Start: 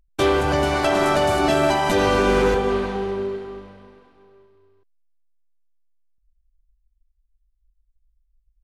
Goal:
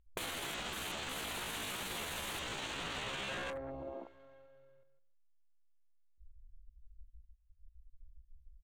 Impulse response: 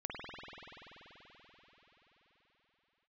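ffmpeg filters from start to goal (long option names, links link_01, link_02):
-filter_complex "[0:a]equalizer=frequency=140:width_type=o:width=0.23:gain=-4,alimiter=limit=-17dB:level=0:latency=1:release=53,asplit=2[link_01][link_02];[link_02]aecho=0:1:156|312:0.316|0.0538[link_03];[link_01][link_03]amix=inputs=2:normalize=0,aeval=exprs='(mod(25.1*val(0)+1,2)-1)/25.1':channel_layout=same,afwtdn=0.0112,aemphasis=mode=reproduction:type=75fm,acompressor=threshold=-47dB:ratio=16,asetrate=60591,aresample=44100,atempo=0.727827,aexciter=amount=1.2:drive=3.8:freq=2800,volume=8.5dB"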